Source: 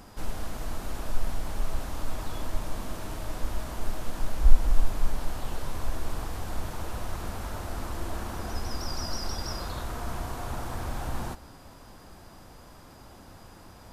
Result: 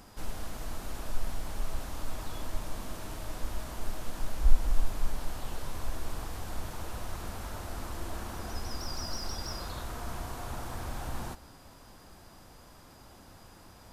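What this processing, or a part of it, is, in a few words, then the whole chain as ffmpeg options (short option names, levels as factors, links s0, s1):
exciter from parts: -filter_complex "[0:a]asplit=2[s0][s1];[s1]highpass=f=2600:p=1,asoftclip=type=tanh:threshold=0.01,volume=0.501[s2];[s0][s2]amix=inputs=2:normalize=0,volume=0.596"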